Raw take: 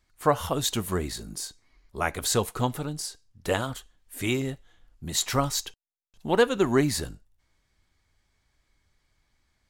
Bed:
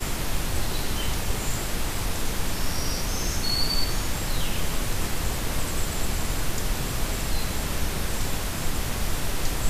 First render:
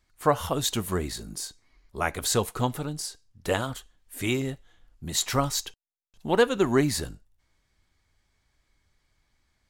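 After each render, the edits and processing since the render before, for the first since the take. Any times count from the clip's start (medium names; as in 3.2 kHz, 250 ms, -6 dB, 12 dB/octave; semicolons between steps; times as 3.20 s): no audible change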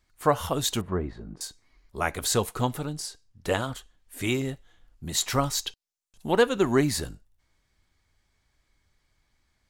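0.81–1.41 s: low-pass 1.3 kHz; 2.91–4.21 s: treble shelf 11 kHz -5.5 dB; 5.65–6.31 s: peaking EQ 3.6 kHz -> 12 kHz +9.5 dB 0.91 oct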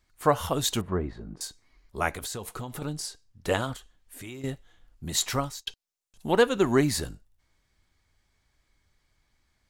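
2.09–2.82 s: compression 8:1, threshold -32 dBFS; 3.76–4.44 s: compression 3:1, threshold -42 dBFS; 5.25–5.67 s: fade out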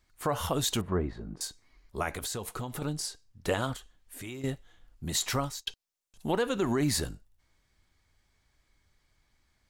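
peak limiter -18 dBFS, peak gain reduction 9.5 dB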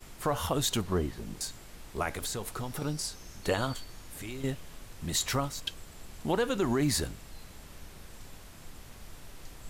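add bed -21 dB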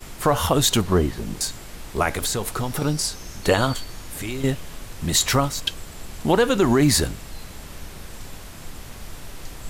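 trim +10.5 dB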